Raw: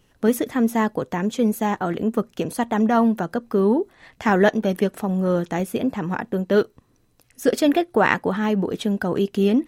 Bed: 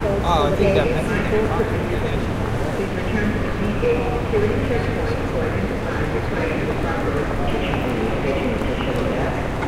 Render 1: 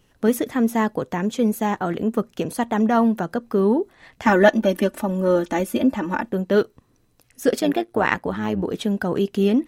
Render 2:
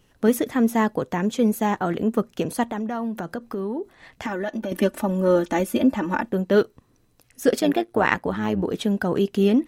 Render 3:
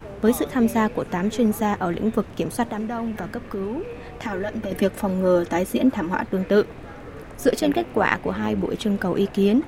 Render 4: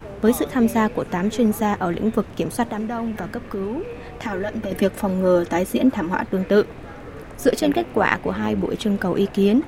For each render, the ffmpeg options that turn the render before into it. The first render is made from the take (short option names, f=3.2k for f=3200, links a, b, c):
-filter_complex "[0:a]asettb=1/sr,asplit=3[a][b][c];[a]atrim=end=4.264[d];[b]atrim=start=4.26:end=6.29,asetpts=PTS-STARTPTS,afade=t=in:d=0.004:c=qsin,afade=t=out:st=2.026:d=0.004:c=qsin,aecho=1:1:3.4:0.92,atrim=end_sample=89523[e];[c]atrim=start=6.286[f];[d][e]acrossfade=d=0.004:c1=hsin:c2=qsin[g];[g][f]acrossfade=d=0.004:c1=qsin:c2=hsin,asplit=3[h][i][j];[h]afade=t=out:st=7.58:d=0.02[k];[i]tremolo=f=110:d=0.667,afade=t=in:st=7.58:d=0.02,afade=t=out:st=8.62:d=0.02[l];[j]afade=t=in:st=8.62:d=0.02[m];[k][l][m]amix=inputs=3:normalize=0"
-filter_complex "[0:a]asettb=1/sr,asplit=3[a][b][c];[a]atrim=end=2.704[d];[b]atrim=start=2.7:end=4.72,asetpts=PTS-STARTPTS,afade=t=in:d=0.004:c=qsin,afade=t=out:st=2.016:d=0.004:c=qsin,acompressor=threshold=-25dB:ratio=6:attack=3.2:release=140:knee=1:detection=peak[e];[c]atrim=start=4.716[f];[d][e]acrossfade=d=0.004:c1=hsin:c2=qsin[g];[g][f]acrossfade=d=0.004:c1=qsin:c2=hsin"
-filter_complex "[1:a]volume=-17dB[a];[0:a][a]amix=inputs=2:normalize=0"
-af "volume=1.5dB"